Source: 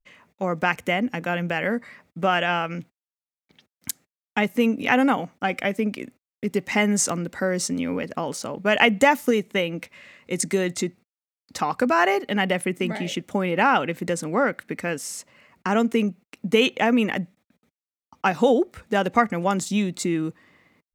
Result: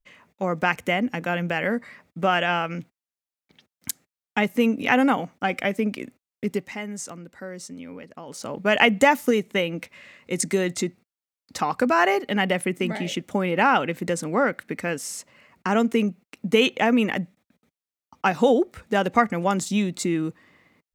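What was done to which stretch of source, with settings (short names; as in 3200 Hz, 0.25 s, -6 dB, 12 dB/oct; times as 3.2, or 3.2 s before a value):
6.48–8.53 dip -12.5 dB, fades 0.27 s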